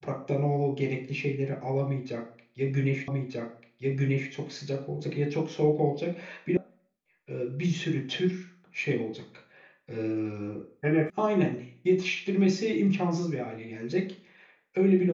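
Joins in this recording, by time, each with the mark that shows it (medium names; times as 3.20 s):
3.08 s: repeat of the last 1.24 s
6.57 s: sound stops dead
11.10 s: sound stops dead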